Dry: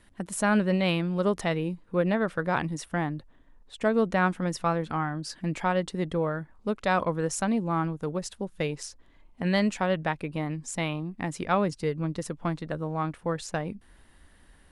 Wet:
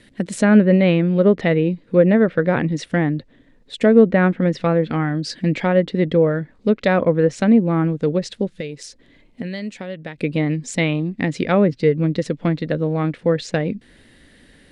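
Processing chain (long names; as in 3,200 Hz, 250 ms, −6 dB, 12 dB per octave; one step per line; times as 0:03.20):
0:08.58–0:10.18: downward compressor 4 to 1, threshold −40 dBFS, peak gain reduction 17 dB
treble cut that deepens with the level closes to 1,800 Hz, closed at −22.5 dBFS
graphic EQ with 10 bands 125 Hz +10 dB, 250 Hz +11 dB, 500 Hz +12 dB, 1,000 Hz −5 dB, 2,000 Hz +11 dB, 4,000 Hz +11 dB, 8,000 Hz +6 dB
level −1 dB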